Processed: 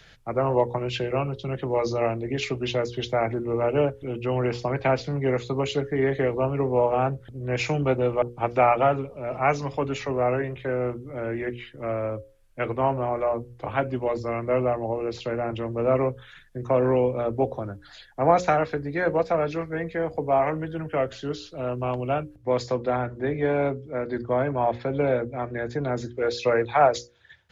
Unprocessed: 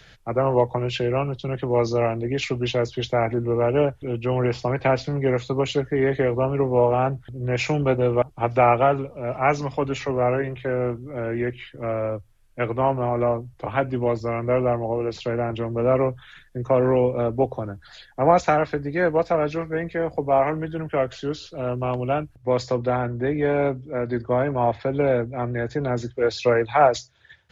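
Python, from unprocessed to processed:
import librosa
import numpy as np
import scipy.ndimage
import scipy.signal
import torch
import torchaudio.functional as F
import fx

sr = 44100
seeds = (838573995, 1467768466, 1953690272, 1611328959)

y = fx.hum_notches(x, sr, base_hz=60, count=9)
y = F.gain(torch.from_numpy(y), -2.0).numpy()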